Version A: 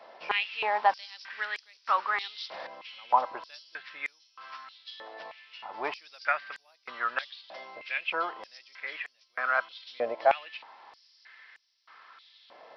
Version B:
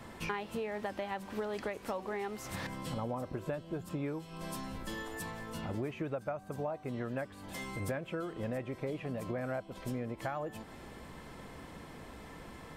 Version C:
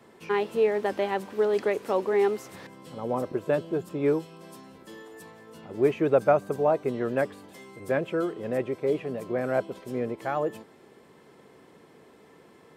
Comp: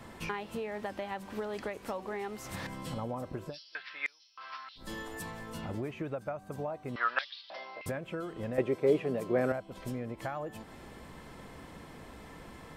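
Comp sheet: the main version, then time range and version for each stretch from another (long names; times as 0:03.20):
B
0:03.51–0:04.83: punch in from A, crossfade 0.16 s
0:06.96–0:07.86: punch in from A
0:08.58–0:09.52: punch in from C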